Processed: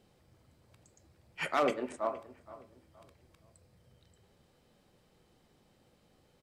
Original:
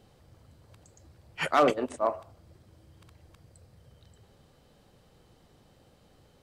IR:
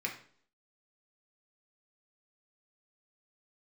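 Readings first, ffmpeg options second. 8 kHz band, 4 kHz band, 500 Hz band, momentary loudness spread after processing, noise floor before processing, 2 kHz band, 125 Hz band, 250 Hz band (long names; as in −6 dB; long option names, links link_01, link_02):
−5.5 dB, −6.0 dB, −6.5 dB, 23 LU, −62 dBFS, −4.5 dB, −8.5 dB, −6.5 dB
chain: -filter_complex "[0:a]asplit=2[link_01][link_02];[link_02]adelay=469,lowpass=frequency=2000:poles=1,volume=-17dB,asplit=2[link_03][link_04];[link_04]adelay=469,lowpass=frequency=2000:poles=1,volume=0.35,asplit=2[link_05][link_06];[link_06]adelay=469,lowpass=frequency=2000:poles=1,volume=0.35[link_07];[link_01][link_03][link_05][link_07]amix=inputs=4:normalize=0,asplit=2[link_08][link_09];[1:a]atrim=start_sample=2205[link_10];[link_09][link_10]afir=irnorm=-1:irlink=0,volume=-9.5dB[link_11];[link_08][link_11]amix=inputs=2:normalize=0,volume=-7.5dB"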